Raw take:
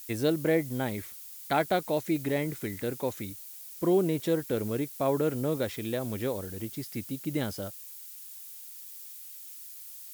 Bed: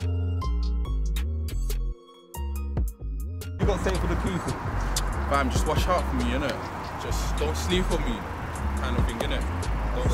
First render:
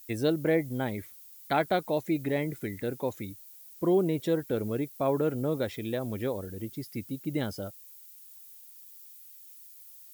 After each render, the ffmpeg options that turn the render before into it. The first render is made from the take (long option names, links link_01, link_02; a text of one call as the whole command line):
ffmpeg -i in.wav -af "afftdn=noise_reduction=9:noise_floor=-46" out.wav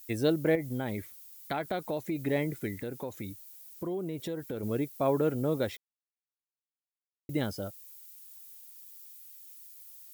ffmpeg -i in.wav -filter_complex "[0:a]asettb=1/sr,asplit=3[link_01][link_02][link_03];[link_01]atrim=end=0.554[link_04];[link_02]atrim=start=0.55:end=2.2,asetpts=PTS-STARTPTS,afade=type=in:duration=0.004:curve=qsin,afade=type=out:start_time=1.646:duration=0.004:curve=qsin,acompressor=threshold=-28dB:ratio=6:attack=3.2:release=140:knee=1:detection=peak[link_05];[link_03]atrim=start=2.196[link_06];[link_04][link_05]acrossfade=duration=0.004:curve1=hsin:curve2=qsin[link_07];[link_07][link_06]acrossfade=duration=0.004:curve1=qsin:curve2=hsin,asettb=1/sr,asplit=3[link_08][link_09][link_10];[link_08]atrim=end=2.774[link_11];[link_09]atrim=start=2.77:end=4.63,asetpts=PTS-STARTPTS,afade=type=in:duration=0.004:curve=qsin,afade=type=out:start_time=1.856:duration=0.004:curve=qsin,acompressor=threshold=-33dB:ratio=4:attack=3.2:release=140:knee=1:detection=peak[link_12];[link_10]atrim=start=4.626[link_13];[link_11][link_12]acrossfade=duration=0.004:curve1=hsin:curve2=qsin[link_14];[link_14][link_13]acrossfade=duration=0.004:curve1=qsin:curve2=hsin,asplit=3[link_15][link_16][link_17];[link_15]atrim=end=5.77,asetpts=PTS-STARTPTS,afade=type=out:start_time=5.766:duration=0.004:curve=hsin[link_18];[link_16]atrim=start=5.77:end=7.29,asetpts=PTS-STARTPTS,volume=0[link_19];[link_17]atrim=start=7.29,asetpts=PTS-STARTPTS,afade=type=in:duration=0.004:curve=hsin[link_20];[link_18][link_19][link_20]concat=n=3:v=0:a=1" out.wav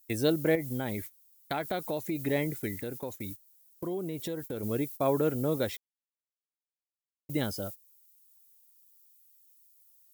ffmpeg -i in.wav -af "agate=range=-18dB:threshold=-42dB:ratio=16:detection=peak,highshelf=frequency=4600:gain=7" out.wav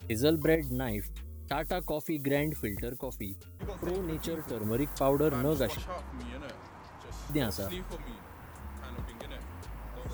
ffmpeg -i in.wav -i bed.wav -filter_complex "[1:a]volume=-15.5dB[link_01];[0:a][link_01]amix=inputs=2:normalize=0" out.wav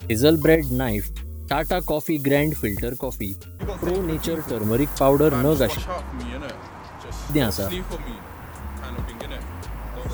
ffmpeg -i in.wav -af "volume=10dB" out.wav